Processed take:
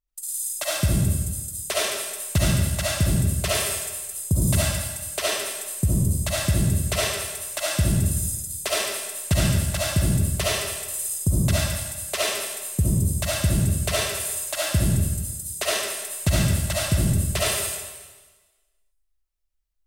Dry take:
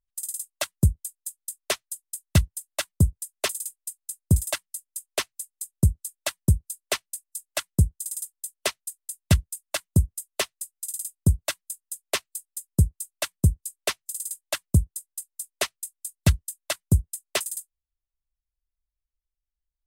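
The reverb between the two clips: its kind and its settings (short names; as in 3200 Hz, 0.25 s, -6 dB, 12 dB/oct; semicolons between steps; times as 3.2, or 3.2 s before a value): digital reverb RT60 1.3 s, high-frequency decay 1×, pre-delay 25 ms, DRR -8.5 dB; gain -3.5 dB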